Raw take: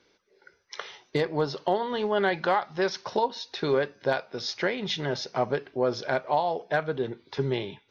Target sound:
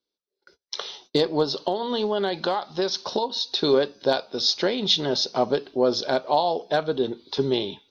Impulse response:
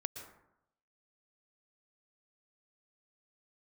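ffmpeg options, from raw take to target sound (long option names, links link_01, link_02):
-filter_complex "[0:a]agate=range=-28dB:threshold=-56dB:ratio=16:detection=peak,equalizer=frequency=125:width_type=o:width=1:gain=-8,equalizer=frequency=250:width_type=o:width=1:gain=4,equalizer=frequency=2000:width_type=o:width=1:gain=-12,equalizer=frequency=4000:width_type=o:width=1:gain=11,asettb=1/sr,asplit=3[link_01][link_02][link_03];[link_01]atrim=end=1.424[link_04];[link_02]atrim=start=1.42:end=3.53,asetpts=PTS-STARTPTS,afade=type=in:duration=0.004:curve=qsin,afade=type=out:start_time=2.106:duration=0.004:curve=qsin,acompressor=threshold=-25dB:ratio=6[link_05];[link_03]atrim=start=3.526[link_06];[link_04][link_05]acrossfade=duration=0.004:curve1=hsin:curve2=qsin[link_07];[link_07][link_06]acrossfade=duration=0.004:curve1=qsin:curve2=hsin,volume=4.5dB"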